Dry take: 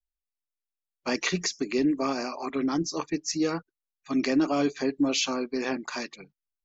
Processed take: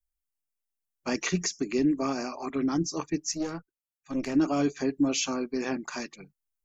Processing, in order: graphic EQ 250/500/1000/2000/4000 Hz -3/-6/-5/-5/-10 dB; 3.33–4.35 s: valve stage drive 25 dB, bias 0.8; trim +4.5 dB

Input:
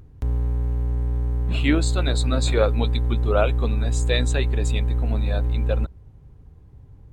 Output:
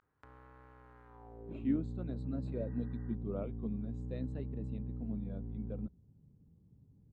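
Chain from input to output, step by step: vibrato 0.5 Hz 90 cents; band-pass sweep 1.4 kHz -> 200 Hz, 1.06–1.72 s; spectral replace 2.60–3.12 s, 720–2000 Hz before; trim -5.5 dB

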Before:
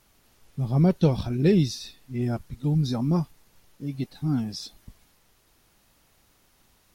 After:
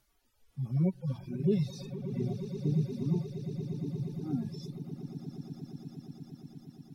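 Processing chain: harmonic-percussive separation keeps harmonic; echo with a slow build-up 117 ms, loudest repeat 8, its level -12 dB; reverb removal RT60 1.9 s; trim -7 dB

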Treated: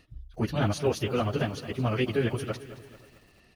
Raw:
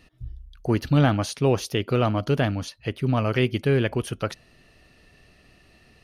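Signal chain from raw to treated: plain phase-vocoder stretch 0.59×; echo from a far wall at 92 m, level -26 dB; bit-crushed delay 220 ms, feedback 55%, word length 8-bit, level -14 dB; trim -1 dB

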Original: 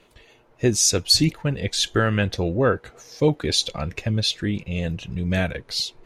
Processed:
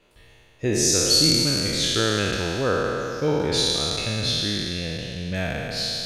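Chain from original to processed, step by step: spectral sustain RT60 2.86 s; trim -6.5 dB

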